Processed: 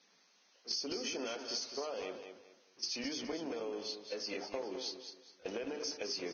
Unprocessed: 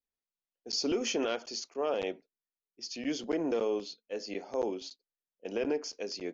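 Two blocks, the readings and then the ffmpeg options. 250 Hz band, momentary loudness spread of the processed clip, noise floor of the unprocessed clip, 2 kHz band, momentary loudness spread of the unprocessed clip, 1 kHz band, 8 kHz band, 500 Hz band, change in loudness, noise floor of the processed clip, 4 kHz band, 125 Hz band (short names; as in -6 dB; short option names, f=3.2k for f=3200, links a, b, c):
-8.5 dB, 10 LU, under -85 dBFS, -4.0 dB, 11 LU, -6.5 dB, n/a, -8.0 dB, -5.5 dB, -69 dBFS, -0.5 dB, -7.5 dB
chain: -af "aeval=exprs='val(0)+0.5*0.00668*sgn(val(0))':c=same,lowshelf=f=340:g=-5,bandreject=f=50:t=h:w=6,bandreject=f=100:t=h:w=6,bandreject=f=150:t=h:w=6,bandreject=f=200:t=h:w=6,bandreject=f=250:t=h:w=6,bandreject=f=300:t=h:w=6,bandreject=f=350:t=h:w=6,bandreject=f=400:t=h:w=6,bandreject=f=450:t=h:w=6,agate=range=-17dB:threshold=-41dB:ratio=16:detection=peak,lowshelf=f=140:g=2,acompressor=threshold=-42dB:ratio=12,aecho=1:1:209|418|627:0.376|0.109|0.0316,volume=4.5dB" -ar 16000 -c:a libvorbis -b:a 16k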